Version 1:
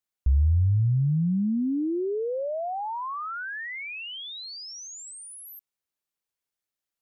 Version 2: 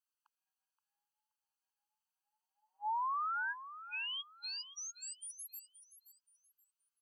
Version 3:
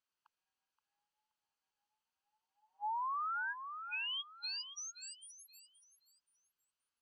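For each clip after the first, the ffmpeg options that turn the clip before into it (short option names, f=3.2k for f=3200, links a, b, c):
-af "aecho=1:1:525|1050|1575:0.211|0.0592|0.0166,afftfilt=real='re*eq(mod(floor(b*sr/1024/820),2),1)':imag='im*eq(mod(floor(b*sr/1024/820),2),1)':win_size=1024:overlap=0.75,volume=-3dB"
-af "lowpass=5.2k,acompressor=threshold=-42dB:ratio=3,volume=4dB"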